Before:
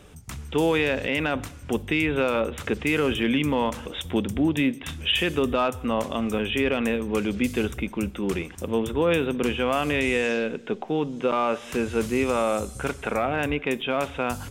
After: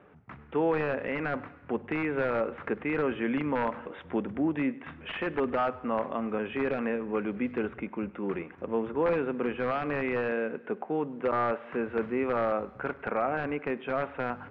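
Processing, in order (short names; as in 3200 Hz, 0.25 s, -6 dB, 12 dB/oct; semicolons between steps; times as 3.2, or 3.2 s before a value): HPF 140 Hz 12 dB/oct; low shelf 390 Hz -6 dB; wrapped overs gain 15.5 dB; LPF 1900 Hz 24 dB/oct; thinning echo 0.102 s, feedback 56%, level -21.5 dB; gain -1.5 dB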